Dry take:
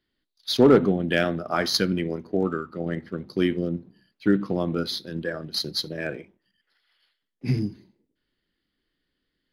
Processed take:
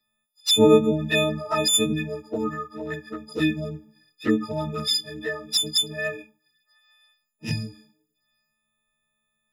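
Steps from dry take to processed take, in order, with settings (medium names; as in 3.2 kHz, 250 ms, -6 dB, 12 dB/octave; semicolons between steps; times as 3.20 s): partials quantised in pitch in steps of 6 st; touch-sensitive flanger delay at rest 8.2 ms, full sweep at -15 dBFS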